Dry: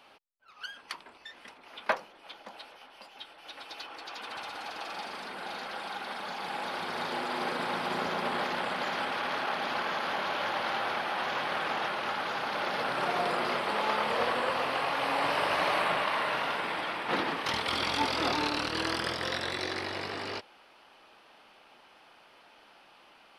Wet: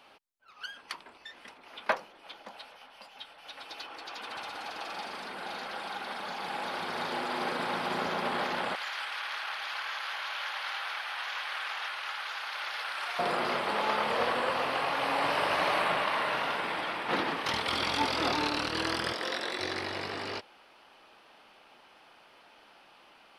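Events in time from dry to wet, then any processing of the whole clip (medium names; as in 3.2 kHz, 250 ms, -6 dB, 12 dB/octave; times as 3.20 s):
2.52–3.63 s: peaking EQ 350 Hz -9 dB 0.43 oct
8.75–13.19 s: high-pass 1.4 kHz
19.13–19.60 s: Chebyshev high-pass 300 Hz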